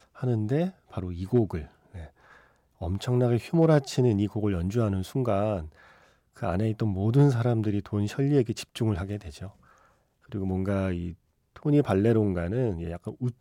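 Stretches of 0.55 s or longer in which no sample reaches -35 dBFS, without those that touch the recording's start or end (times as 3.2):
2.04–2.81
5.66–6.42
9.48–10.32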